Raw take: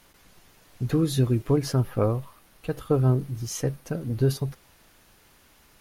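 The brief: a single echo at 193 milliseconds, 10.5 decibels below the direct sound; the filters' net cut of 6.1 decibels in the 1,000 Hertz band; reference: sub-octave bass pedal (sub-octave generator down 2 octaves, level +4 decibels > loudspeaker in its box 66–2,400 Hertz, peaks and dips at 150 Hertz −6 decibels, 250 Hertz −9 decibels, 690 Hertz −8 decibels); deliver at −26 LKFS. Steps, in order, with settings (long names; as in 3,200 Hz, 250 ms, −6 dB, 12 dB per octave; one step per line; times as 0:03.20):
parametric band 1,000 Hz −5.5 dB
single-tap delay 193 ms −10.5 dB
sub-octave generator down 2 octaves, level +4 dB
loudspeaker in its box 66–2,400 Hz, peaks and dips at 150 Hz −6 dB, 250 Hz −9 dB, 690 Hz −8 dB
level +1.5 dB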